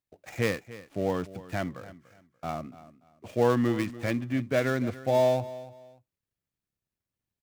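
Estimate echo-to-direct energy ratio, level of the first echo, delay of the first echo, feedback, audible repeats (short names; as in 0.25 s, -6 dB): -16.5 dB, -17.0 dB, 0.29 s, 26%, 2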